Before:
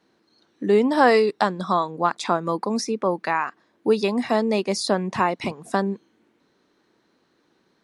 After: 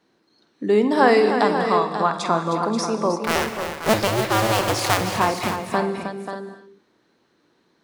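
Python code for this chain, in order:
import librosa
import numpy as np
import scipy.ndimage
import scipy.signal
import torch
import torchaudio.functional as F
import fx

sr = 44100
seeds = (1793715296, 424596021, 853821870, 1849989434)

p1 = fx.cycle_switch(x, sr, every=2, mode='inverted', at=(3.24, 5.01))
p2 = p1 + fx.echo_multitap(p1, sr, ms=(48, 312, 535, 588), db=(-12.5, -9.0, -9.5, -13.5), dry=0)
y = fx.rev_gated(p2, sr, seeds[0], gate_ms=300, shape='flat', drr_db=10.0)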